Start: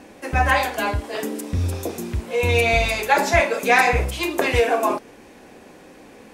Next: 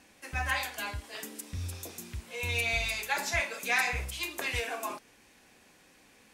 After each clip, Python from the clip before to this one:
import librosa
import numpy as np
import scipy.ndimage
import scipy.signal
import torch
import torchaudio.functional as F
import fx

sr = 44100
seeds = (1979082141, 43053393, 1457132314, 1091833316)

y = fx.tone_stack(x, sr, knobs='5-5-5')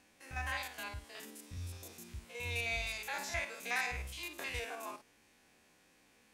y = fx.spec_steps(x, sr, hold_ms=50)
y = y * 10.0 ** (-6.0 / 20.0)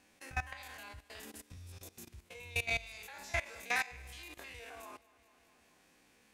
y = fx.echo_feedback(x, sr, ms=212, feedback_pct=53, wet_db=-15.0)
y = fx.transient(y, sr, attack_db=3, sustain_db=-5)
y = fx.level_steps(y, sr, step_db=18)
y = y * 10.0 ** (4.5 / 20.0)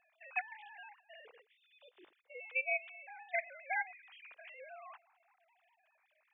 y = fx.sine_speech(x, sr)
y = y * 10.0 ** (-1.5 / 20.0)